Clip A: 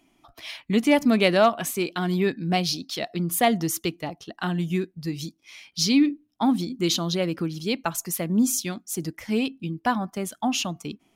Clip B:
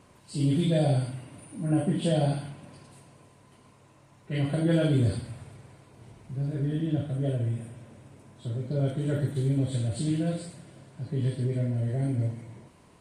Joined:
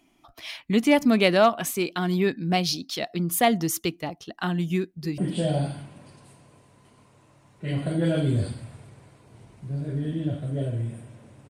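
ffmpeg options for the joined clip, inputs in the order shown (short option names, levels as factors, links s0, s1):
-filter_complex "[0:a]apad=whole_dur=11.49,atrim=end=11.49,atrim=end=5.182[s0];[1:a]atrim=start=1.848:end=8.16[s1];[s0][s1]acrossfade=d=0.004:c1=hsin:c2=hsin,asplit=2[s2][s3];[s3]afade=t=in:st=4.78:d=0.01,afade=t=out:st=5.18:d=0.01,aecho=0:1:250|500|750:0.16788|0.0587581|0.0205653[s4];[s2][s4]amix=inputs=2:normalize=0"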